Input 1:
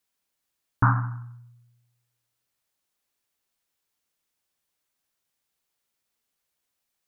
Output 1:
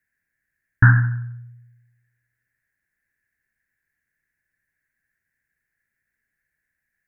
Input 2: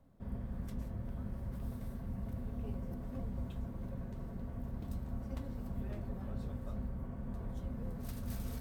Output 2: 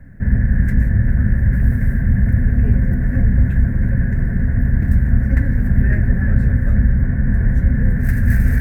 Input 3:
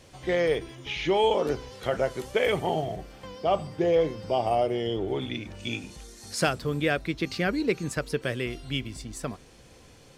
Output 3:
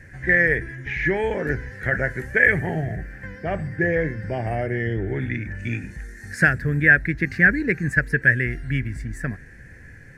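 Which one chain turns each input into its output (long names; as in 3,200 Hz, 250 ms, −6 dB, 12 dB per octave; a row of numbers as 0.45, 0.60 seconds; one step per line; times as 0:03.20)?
drawn EQ curve 120 Hz 0 dB, 480 Hz −13 dB, 1,200 Hz −19 dB, 1,700 Hz +12 dB, 3,200 Hz −26 dB, 6,500 Hz −18 dB, 12,000 Hz −15 dB
normalise the peak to −2 dBFS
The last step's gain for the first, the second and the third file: +9.0, +27.5, +11.5 decibels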